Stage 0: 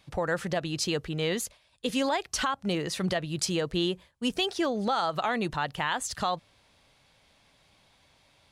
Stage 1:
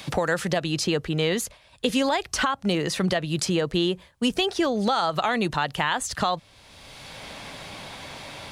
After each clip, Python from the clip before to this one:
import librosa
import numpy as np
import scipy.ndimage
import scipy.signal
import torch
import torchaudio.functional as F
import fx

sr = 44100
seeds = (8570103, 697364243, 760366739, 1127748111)

y = fx.band_squash(x, sr, depth_pct=70)
y = y * 10.0 ** (4.5 / 20.0)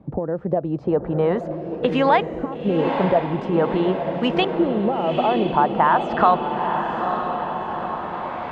y = fx.peak_eq(x, sr, hz=890.0, db=9.0, octaves=1.8)
y = fx.filter_lfo_lowpass(y, sr, shape='saw_up', hz=0.45, low_hz=260.0, high_hz=2700.0, q=1.2)
y = fx.echo_diffused(y, sr, ms=922, feedback_pct=58, wet_db=-5.5)